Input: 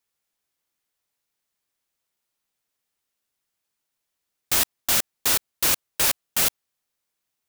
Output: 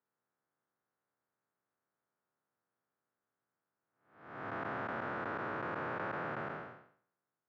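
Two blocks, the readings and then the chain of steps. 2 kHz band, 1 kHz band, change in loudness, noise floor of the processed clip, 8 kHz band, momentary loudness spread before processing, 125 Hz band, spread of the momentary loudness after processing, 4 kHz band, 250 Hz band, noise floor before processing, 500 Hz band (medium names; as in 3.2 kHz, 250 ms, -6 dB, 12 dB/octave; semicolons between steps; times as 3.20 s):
-9.5 dB, -4.0 dB, -18.5 dB, under -85 dBFS, under -40 dB, 1 LU, -5.0 dB, 13 LU, -33.0 dB, -4.0 dB, -81 dBFS, -3.5 dB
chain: spectral blur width 422 ms; elliptic band-pass 110–1500 Hz, stop band 80 dB; trim +3.5 dB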